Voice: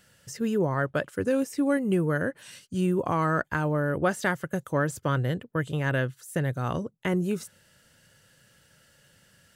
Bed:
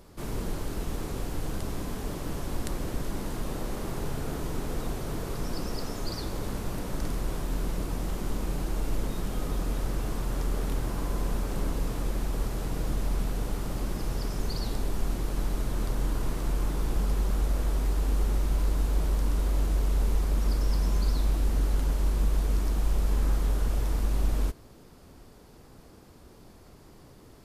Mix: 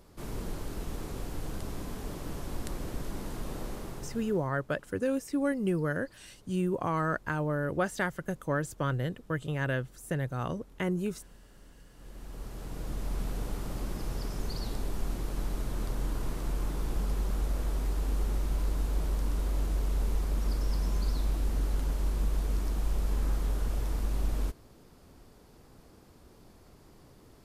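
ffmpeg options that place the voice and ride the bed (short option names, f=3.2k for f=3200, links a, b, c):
-filter_complex "[0:a]adelay=3750,volume=-4.5dB[a];[1:a]volume=17.5dB,afade=t=out:st=3.65:d=0.86:silence=0.0841395,afade=t=in:st=11.92:d=1.4:silence=0.0794328[b];[a][b]amix=inputs=2:normalize=0"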